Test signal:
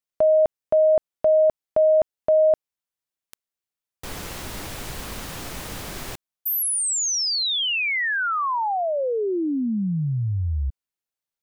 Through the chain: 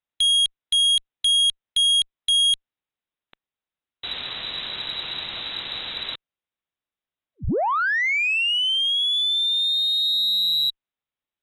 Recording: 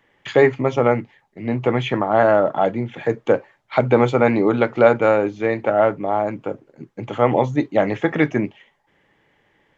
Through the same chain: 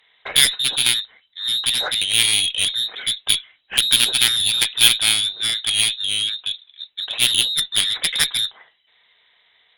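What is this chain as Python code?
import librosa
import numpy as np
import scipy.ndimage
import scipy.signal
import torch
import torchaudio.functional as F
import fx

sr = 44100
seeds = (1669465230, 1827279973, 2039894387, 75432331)

y = fx.freq_invert(x, sr, carrier_hz=3900)
y = fx.cheby_harmonics(y, sr, harmonics=(2, 4, 6, 7), levels_db=(-15, -29, -31, -8), full_scale_db=0.0)
y = y * 10.0 ** (-2.5 / 20.0)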